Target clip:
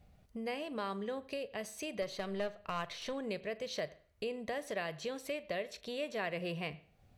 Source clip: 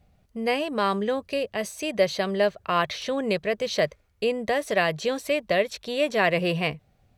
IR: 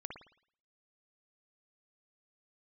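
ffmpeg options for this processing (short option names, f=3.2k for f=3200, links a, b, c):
-filter_complex "[0:a]acompressor=threshold=-44dB:ratio=2,asettb=1/sr,asplit=3[a][b][c];[a]atrim=end=2.024[d];[b]atrim=start=2.02:end=3.13,asetpts=PTS-STARTPTS,afade=t=in:d=0.004:c=qsin,afade=t=out:st=1.106:d=0.004:c=qsin,aeval=exprs='0.0562*(cos(1*acos(clip(val(0)/0.0562,-1,1)))-cos(1*PI/2))+0.00562*(cos(4*acos(clip(val(0)/0.0562,-1,1)))-cos(4*PI/2))':c=same[e];[c]atrim=start=3.126[f];[d][e]acrossfade=d=0.004:c1=hsin:c2=qsin[g];[g][f]acrossfade=d=0.004:c1=qsin:c2=hsin,asplit=2[h][i];[1:a]atrim=start_sample=2205,asetrate=52920,aresample=44100,adelay=41[j];[i][j]afir=irnorm=-1:irlink=0,volume=-11.5dB[k];[h][k]amix=inputs=2:normalize=0,volume=-2dB"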